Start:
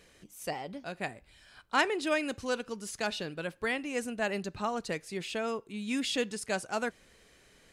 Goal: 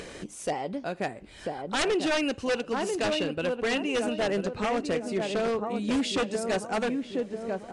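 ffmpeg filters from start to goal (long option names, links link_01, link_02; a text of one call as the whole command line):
ffmpeg -i in.wav -filter_complex "[0:a]asettb=1/sr,asplit=3[link_01][link_02][link_03];[link_01]atrim=end=1.814[link_04];[link_02]atrim=start=1.81:end=4.17,asetpts=PTS-STARTPTS,afade=type=in:duration=0.004:curve=qsin,afade=type=out:start_time=2.356:duration=0.004:curve=qsin,equalizer=frequency=2800:width_type=o:width=0.2:gain=12[link_05];[link_03]atrim=start=4.166[link_06];[link_04][link_05]acrossfade=duration=0.004:curve1=hsin:curve2=qsin[link_07];[link_07][link_06]acrossfade=duration=0.004:curve1=qsin:curve2=hsin,asplit=2[link_08][link_09];[link_09]adelay=993,lowpass=frequency=880:poles=1,volume=-5dB,asplit=2[link_10][link_11];[link_11]adelay=993,lowpass=frequency=880:poles=1,volume=0.45,asplit=2[link_12][link_13];[link_13]adelay=993,lowpass=frequency=880:poles=1,volume=0.45,asplit=2[link_14][link_15];[link_15]adelay=993,lowpass=frequency=880:poles=1,volume=0.45,asplit=2[link_16][link_17];[link_17]adelay=993,lowpass=frequency=880:poles=1,volume=0.45,asplit=2[link_18][link_19];[link_19]adelay=993,lowpass=frequency=880:poles=1,volume=0.45[link_20];[link_08][link_10][link_12][link_14][link_16][link_18][link_20]amix=inputs=7:normalize=0,acompressor=mode=upward:threshold=-34dB:ratio=2.5,equalizer=frequency=420:width_type=o:width=3:gain=8,aeval=exprs='0.0944*(abs(mod(val(0)/0.0944+3,4)-2)-1)':channel_layout=same" -ar 22050 -c:a libvorbis -b:a 48k out.ogg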